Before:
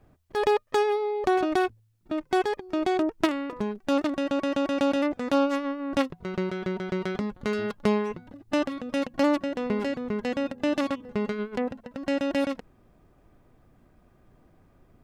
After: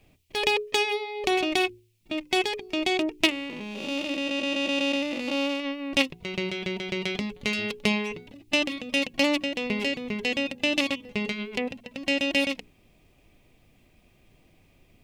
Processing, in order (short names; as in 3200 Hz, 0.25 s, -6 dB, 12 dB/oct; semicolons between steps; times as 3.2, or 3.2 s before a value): 3.3–5.6 time blur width 0.281 s; resonant high shelf 1900 Hz +9 dB, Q 3; notches 60/120/180/240/300/360/420 Hz; gain -1 dB